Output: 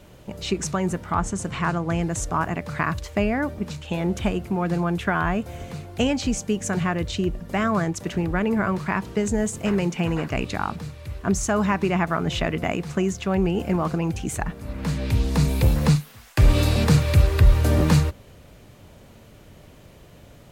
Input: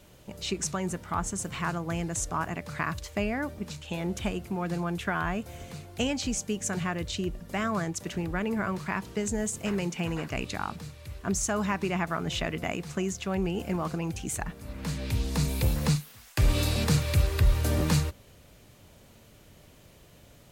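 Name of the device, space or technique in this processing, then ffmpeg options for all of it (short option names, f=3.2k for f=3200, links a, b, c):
behind a face mask: -filter_complex "[0:a]highshelf=f=2.9k:g=-7.5,asettb=1/sr,asplit=3[a][b][c];[a]atrim=end=1.124[d];[b]atrim=start=1.12:end=2.02,asetpts=PTS-STARTPTS,afade=t=in:d=0.004:c=qsin,afade=t=out:st=0.896:d=0.004:c=qsin,lowpass=10k[e];[c]atrim=start=2.016[f];[d][e]acrossfade=d=0.004:c1=hsin:c2=qsin[g];[g][f]acrossfade=d=0.004:c1=qsin:c2=hsin,volume=7.5dB"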